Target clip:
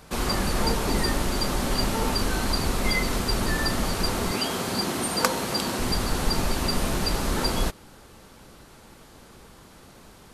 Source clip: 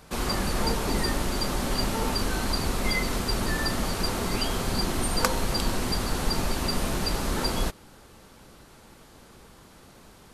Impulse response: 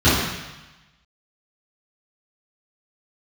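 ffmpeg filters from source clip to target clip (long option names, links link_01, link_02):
-filter_complex "[0:a]asettb=1/sr,asplit=3[link_01][link_02][link_03];[link_01]atrim=end=4.314[link_04];[link_02]atrim=start=4.31:end=5.79,asetpts=PTS-STARTPTS,afade=type=in:duration=0.004:curve=qsin,afade=type=out:start_time=1.476:duration=0.004:curve=qsin,highpass=150[link_05];[link_03]atrim=start=5.786[link_06];[link_04][link_05]acrossfade=duration=0.004:curve1=hsin:curve2=qsin[link_07];[link_07][link_06]acrossfade=duration=0.004:curve1=qsin:curve2=hsin,volume=2dB"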